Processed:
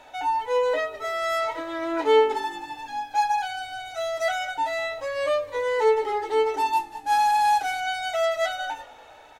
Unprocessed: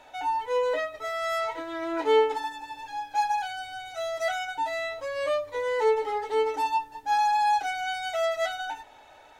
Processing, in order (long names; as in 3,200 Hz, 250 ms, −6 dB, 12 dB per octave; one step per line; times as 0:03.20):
0:06.73–0:07.80: variable-slope delta modulation 64 kbit/s
echo with shifted repeats 197 ms, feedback 51%, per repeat −48 Hz, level −22 dB
level +3 dB